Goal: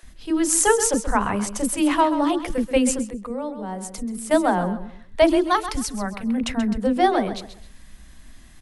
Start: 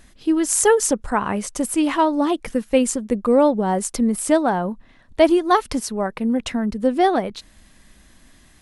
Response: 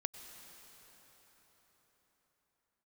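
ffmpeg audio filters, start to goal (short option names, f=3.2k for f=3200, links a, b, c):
-filter_complex "[0:a]asettb=1/sr,asplit=3[a][b][c];[a]atrim=end=5.444[d];[b]atrim=start=5.44:end=6.38,asetpts=PTS-STARTPTS,afade=t=in:d=0.004:c=qsin,afade=t=out:st=0.936:d=0.004:c=qsin,equalizer=f=490:t=o:w=1.6:g=-8[e];[c]atrim=start=6.376[f];[d][e]acrossfade=d=0.004:c1=hsin:c2=qsin[g];[g][f]acrossfade=d=0.004:c1=qsin:c2=hsin,aecho=1:1:132|264|396:0.266|0.0745|0.0209,asettb=1/sr,asplit=3[h][i][j];[h]atrim=end=3.014[k];[i]atrim=start=3.01:end=4.31,asetpts=PTS-STARTPTS,afade=t=in:d=0.004:c=qsin,afade=t=out:st=1.296:d=0.004:c=qsin,acompressor=threshold=-36dB:ratio=2[l];[j]atrim=start=4.306[m];[k][l]acrossfade=d=0.004:c1=hsin:c2=qsin[n];[n][m]acrossfade=d=0.004:c1=qsin:c2=hsin,lowshelf=f=68:g=9.5,acrossover=split=430[o][p];[o]adelay=30[q];[q][p]amix=inputs=2:normalize=0"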